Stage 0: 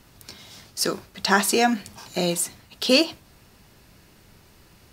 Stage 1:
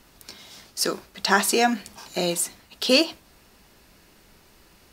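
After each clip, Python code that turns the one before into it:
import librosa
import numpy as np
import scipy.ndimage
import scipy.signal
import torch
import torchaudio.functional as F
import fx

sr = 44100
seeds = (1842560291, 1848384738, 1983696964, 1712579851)

y = fx.peak_eq(x, sr, hz=110.0, db=-10.0, octaves=1.1)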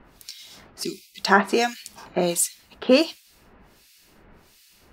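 y = fx.spec_box(x, sr, start_s=0.83, length_s=0.36, low_hz=410.0, high_hz=2000.0, gain_db=-27)
y = fx.harmonic_tremolo(y, sr, hz=1.4, depth_pct=100, crossover_hz=2200.0)
y = F.gain(torch.from_numpy(y), 5.0).numpy()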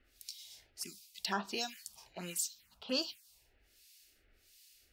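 y = fx.tone_stack(x, sr, knobs='5-5-5')
y = fx.env_phaser(y, sr, low_hz=160.0, high_hz=2100.0, full_db=-30.5)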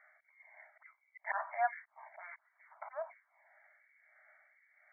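y = fx.auto_swell(x, sr, attack_ms=204.0)
y = fx.brickwall_bandpass(y, sr, low_hz=580.0, high_hz=2300.0)
y = F.gain(torch.from_numpy(y), 13.5).numpy()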